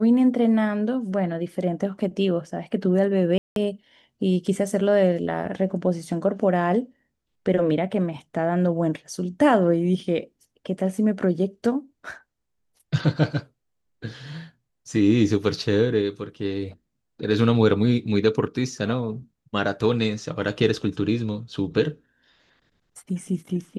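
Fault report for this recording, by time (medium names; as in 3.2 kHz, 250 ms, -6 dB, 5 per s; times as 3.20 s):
3.38–3.56 s: dropout 182 ms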